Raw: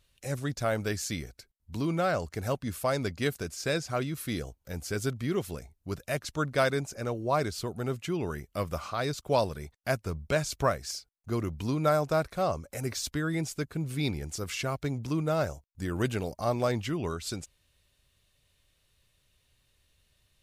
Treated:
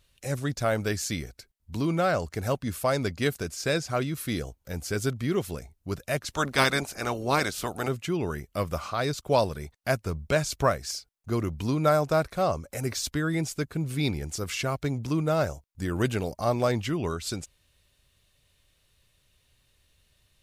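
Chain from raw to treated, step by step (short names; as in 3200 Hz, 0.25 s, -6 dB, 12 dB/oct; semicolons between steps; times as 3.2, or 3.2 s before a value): 6.29–7.87 spectral limiter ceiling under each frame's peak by 17 dB; gain +3 dB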